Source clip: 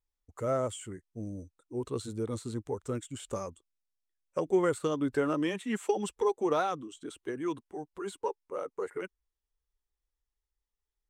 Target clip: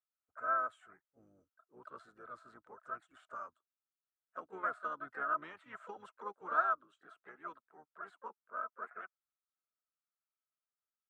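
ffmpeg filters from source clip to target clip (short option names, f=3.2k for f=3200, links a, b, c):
-filter_complex "[0:a]bandpass=f=1.3k:t=q:w=12:csg=0,asplit=4[a][b][c][d];[b]asetrate=22050,aresample=44100,atempo=2,volume=-12dB[e];[c]asetrate=35002,aresample=44100,atempo=1.25992,volume=-18dB[f];[d]asetrate=52444,aresample=44100,atempo=0.840896,volume=-9dB[g];[a][e][f][g]amix=inputs=4:normalize=0,volume=6.5dB"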